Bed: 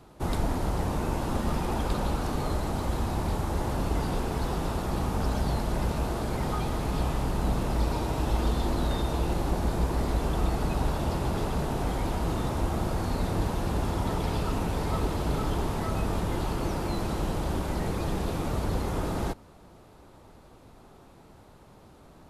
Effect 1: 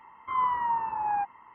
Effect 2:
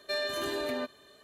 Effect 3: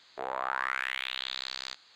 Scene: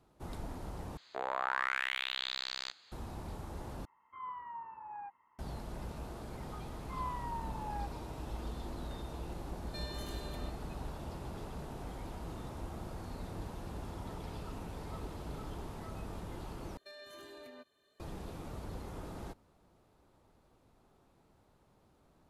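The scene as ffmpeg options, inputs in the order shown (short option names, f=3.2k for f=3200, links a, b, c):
-filter_complex "[1:a]asplit=2[a][b];[2:a]asplit=2[c][d];[0:a]volume=-15dB[e];[c]acrossover=split=180|3000[f][g][h];[g]acompressor=threshold=-41dB:ratio=6:attack=3.2:release=140:knee=2.83:detection=peak[i];[f][i][h]amix=inputs=3:normalize=0[j];[d]alimiter=level_in=3.5dB:limit=-24dB:level=0:latency=1:release=313,volume=-3.5dB[k];[e]asplit=4[l][m][n][o];[l]atrim=end=0.974[p];[3:a]atrim=end=1.95,asetpts=PTS-STARTPTS,volume=-2dB[q];[m]atrim=start=2.916:end=3.854[r];[a]atrim=end=1.54,asetpts=PTS-STARTPTS,volume=-17.5dB[s];[n]atrim=start=5.386:end=16.774[t];[k]atrim=end=1.23,asetpts=PTS-STARTPTS,volume=-15dB[u];[o]atrim=start=17.996[v];[b]atrim=end=1.54,asetpts=PTS-STARTPTS,volume=-14dB,afade=t=in:d=0.004:c=hsin,afade=t=out:st=1.536:d=0.004:c=hsin,adelay=6620[w];[j]atrim=end=1.23,asetpts=PTS-STARTPTS,volume=-9dB,afade=t=in:d=0.004:c=hsin,afade=t=out:st=1.226:d=0.004:c=hsin,adelay=9650[x];[p][q]acrossfade=d=0.004:c1=hsin:c2=hsin[y];[y][r]acrossfade=d=0.004:c1=hsin:c2=hsin[z];[z][s]acrossfade=d=0.004:c1=hsin:c2=hsin[aa];[aa][t]acrossfade=d=0.004:c1=hsin:c2=hsin[ab];[ab][u]acrossfade=d=0.004:c1=hsin:c2=hsin[ac];[ac][v]acrossfade=d=0.004:c1=hsin:c2=hsin[ad];[ad][w][x]amix=inputs=3:normalize=0"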